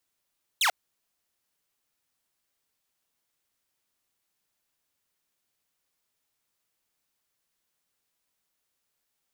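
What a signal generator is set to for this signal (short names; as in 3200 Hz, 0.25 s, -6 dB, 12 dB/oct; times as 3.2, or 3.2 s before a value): laser zap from 4100 Hz, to 630 Hz, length 0.09 s saw, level -18 dB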